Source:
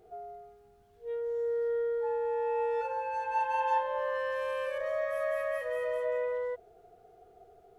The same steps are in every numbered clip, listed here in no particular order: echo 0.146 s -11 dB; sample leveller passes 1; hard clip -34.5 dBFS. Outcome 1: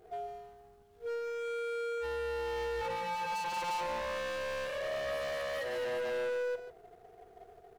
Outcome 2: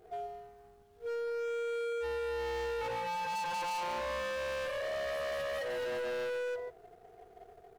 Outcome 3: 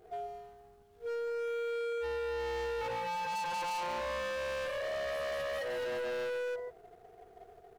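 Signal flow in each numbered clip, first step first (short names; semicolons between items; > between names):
sample leveller > hard clip > echo; echo > sample leveller > hard clip; sample leveller > echo > hard clip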